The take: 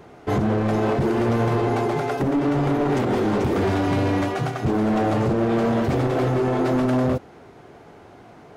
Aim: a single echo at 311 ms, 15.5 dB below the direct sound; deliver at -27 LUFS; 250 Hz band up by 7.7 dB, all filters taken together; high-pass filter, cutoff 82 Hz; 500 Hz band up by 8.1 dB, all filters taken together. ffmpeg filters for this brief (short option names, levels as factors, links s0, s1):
-af "highpass=82,equalizer=f=250:t=o:g=7,equalizer=f=500:t=o:g=8,aecho=1:1:311:0.168,volume=0.251"